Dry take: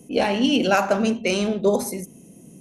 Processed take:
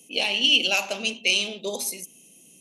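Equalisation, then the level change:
high-pass filter 510 Hz 6 dB per octave
high shelf with overshoot 2,100 Hz +10 dB, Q 3
−7.5 dB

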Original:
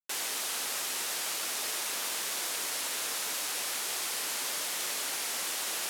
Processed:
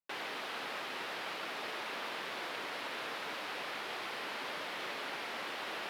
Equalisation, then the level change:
high-frequency loss of the air 380 metres
high-shelf EQ 8,700 Hz +3.5 dB
+2.0 dB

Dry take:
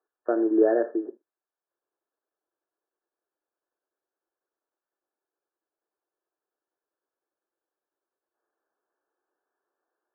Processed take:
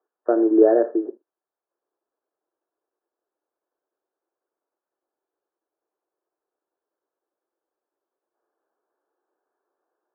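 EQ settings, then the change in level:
high-pass filter 260 Hz
low-pass filter 1,400 Hz 12 dB per octave
high-frequency loss of the air 490 metres
+7.5 dB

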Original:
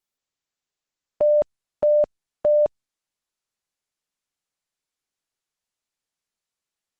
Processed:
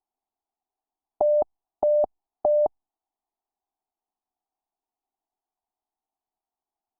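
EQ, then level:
low-pass with resonance 760 Hz, resonance Q 4.9
phaser with its sweep stopped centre 540 Hz, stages 6
0.0 dB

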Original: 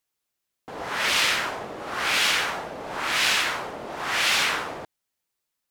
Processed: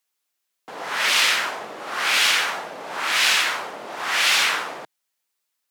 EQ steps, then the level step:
high-pass filter 140 Hz 24 dB per octave
low-shelf EQ 480 Hz −10 dB
+4.0 dB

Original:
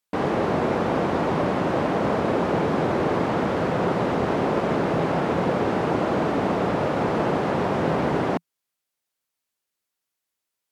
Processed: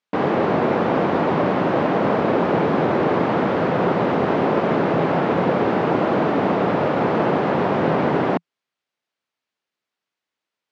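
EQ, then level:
band-pass filter 120–3,800 Hz
+4.0 dB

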